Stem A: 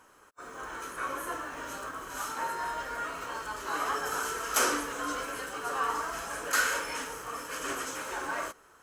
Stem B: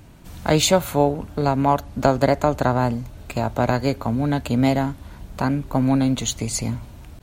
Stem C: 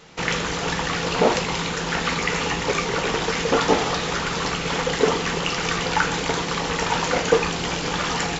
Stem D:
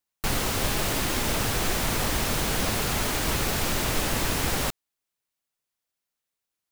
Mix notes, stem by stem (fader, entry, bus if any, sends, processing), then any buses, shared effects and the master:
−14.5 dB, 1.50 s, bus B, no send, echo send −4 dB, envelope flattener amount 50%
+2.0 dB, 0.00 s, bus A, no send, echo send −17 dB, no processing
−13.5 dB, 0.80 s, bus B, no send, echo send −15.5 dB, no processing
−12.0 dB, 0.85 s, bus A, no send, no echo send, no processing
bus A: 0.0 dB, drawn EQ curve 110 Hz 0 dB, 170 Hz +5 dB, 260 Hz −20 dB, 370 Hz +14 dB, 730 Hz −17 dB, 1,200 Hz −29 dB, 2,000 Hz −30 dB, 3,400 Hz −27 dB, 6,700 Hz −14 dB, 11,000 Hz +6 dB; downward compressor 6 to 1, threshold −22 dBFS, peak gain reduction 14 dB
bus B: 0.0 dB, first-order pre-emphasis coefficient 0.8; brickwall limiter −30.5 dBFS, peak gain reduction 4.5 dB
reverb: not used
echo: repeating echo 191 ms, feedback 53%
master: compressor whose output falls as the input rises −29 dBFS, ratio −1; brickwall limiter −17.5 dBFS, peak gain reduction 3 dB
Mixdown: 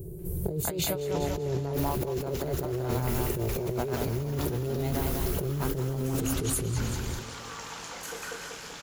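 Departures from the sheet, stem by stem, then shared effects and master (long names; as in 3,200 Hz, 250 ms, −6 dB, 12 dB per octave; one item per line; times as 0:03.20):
stem A: missing envelope flattener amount 50%
stem D: entry 0.85 s → 1.50 s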